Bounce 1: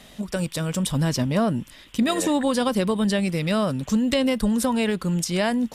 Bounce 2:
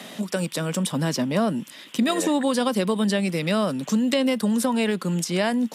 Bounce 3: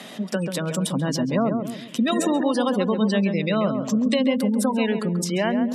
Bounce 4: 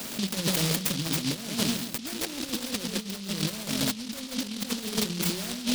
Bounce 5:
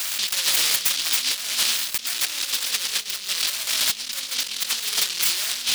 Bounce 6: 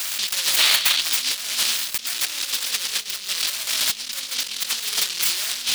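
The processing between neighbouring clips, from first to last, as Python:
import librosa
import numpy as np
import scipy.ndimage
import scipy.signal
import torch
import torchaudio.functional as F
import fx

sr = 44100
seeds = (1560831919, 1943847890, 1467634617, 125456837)

y1 = scipy.signal.sosfilt(scipy.signal.butter(4, 170.0, 'highpass', fs=sr, output='sos'), x)
y1 = fx.band_squash(y1, sr, depth_pct=40)
y2 = fx.spec_gate(y1, sr, threshold_db=-25, keep='strong')
y2 = fx.echo_filtered(y2, sr, ms=136, feedback_pct=41, hz=1200.0, wet_db=-5.5)
y3 = fx.over_compress(y2, sr, threshold_db=-27.0, ratio=-0.5)
y3 = fx.hum_notches(y3, sr, base_hz=60, count=3)
y3 = fx.noise_mod_delay(y3, sr, seeds[0], noise_hz=3900.0, depth_ms=0.36)
y3 = y3 * 10.0 ** (-2.0 / 20.0)
y4 = scipy.signal.sosfilt(scipy.signal.butter(2, 1500.0, 'highpass', fs=sr, output='sos'), y3)
y4 = fx.leveller(y4, sr, passes=3)
y5 = fx.spec_box(y4, sr, start_s=0.59, length_s=0.42, low_hz=560.0, high_hz=4600.0, gain_db=7)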